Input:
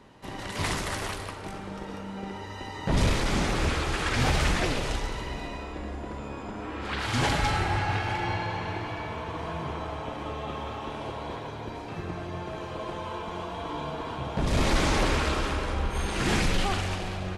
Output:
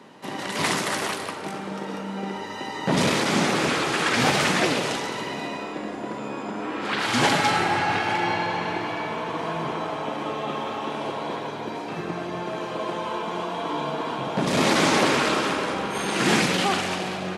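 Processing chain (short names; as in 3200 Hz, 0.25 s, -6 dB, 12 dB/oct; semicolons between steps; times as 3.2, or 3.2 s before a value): HPF 160 Hz 24 dB/oct; gain +6.5 dB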